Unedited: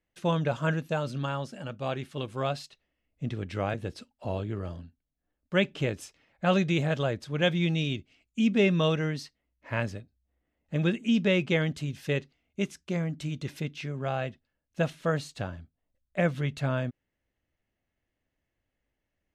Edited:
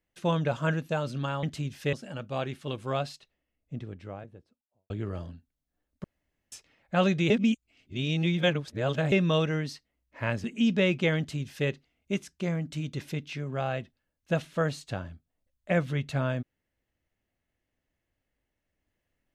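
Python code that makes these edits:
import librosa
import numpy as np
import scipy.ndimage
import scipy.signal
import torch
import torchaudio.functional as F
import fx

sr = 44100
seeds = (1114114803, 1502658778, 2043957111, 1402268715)

y = fx.studio_fade_out(x, sr, start_s=2.38, length_s=2.02)
y = fx.edit(y, sr, fx.room_tone_fill(start_s=5.54, length_s=0.48),
    fx.reverse_span(start_s=6.8, length_s=1.82),
    fx.cut(start_s=9.94, length_s=0.98),
    fx.duplicate(start_s=11.66, length_s=0.5, to_s=1.43), tone=tone)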